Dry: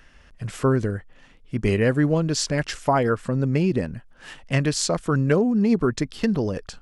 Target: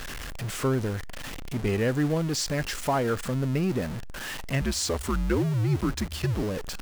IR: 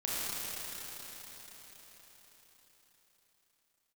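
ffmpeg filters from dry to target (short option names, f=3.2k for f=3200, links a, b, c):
-filter_complex "[0:a]aeval=exprs='val(0)+0.5*0.0668*sgn(val(0))':c=same,asplit=2[a][b];[1:a]atrim=start_sample=2205,atrim=end_sample=3087[c];[b][c]afir=irnorm=-1:irlink=0,volume=-26dB[d];[a][d]amix=inputs=2:normalize=0,asettb=1/sr,asplit=3[e][f][g];[e]atrim=end=4.614[h];[f]atrim=start=4.61:end=6.43,asetpts=PTS-STARTPTS,afade=t=in:d=0.004:c=qsin,afade=t=out:st=1.816:d=0.004:c=qsin,afreqshift=-88[i];[g]atrim=start=6.426[j];[h][i]acrossfade=d=0.004:c1=hsin:c2=qsin[k];[k][j]acrossfade=d=0.004:c1=qsin:c2=hsin,volume=-7.5dB"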